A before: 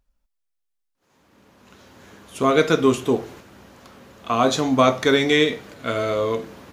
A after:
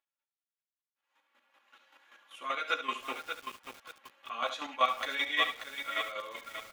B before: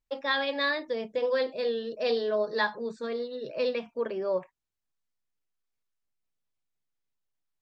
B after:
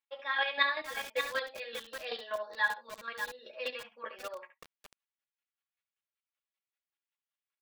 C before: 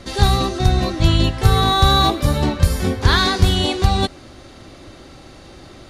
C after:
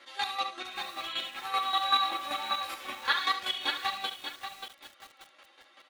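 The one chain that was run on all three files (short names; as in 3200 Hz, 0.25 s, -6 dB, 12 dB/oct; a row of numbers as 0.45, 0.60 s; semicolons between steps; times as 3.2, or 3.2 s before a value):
rattling part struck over -21 dBFS, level -23 dBFS; HPF 1000 Hz 12 dB/oct; resonant high shelf 4000 Hz -8 dB, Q 1.5; comb 3.6 ms, depth 61%; chorus voices 6, 0.53 Hz, delay 11 ms, depth 3.4 ms; chopper 5.2 Hz, depth 60%, duty 25%; echo 71 ms -11 dB; lo-fi delay 0.585 s, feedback 35%, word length 7-bit, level -6.5 dB; normalise peaks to -12 dBFS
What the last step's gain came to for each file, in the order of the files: -3.5, +4.5, -4.0 dB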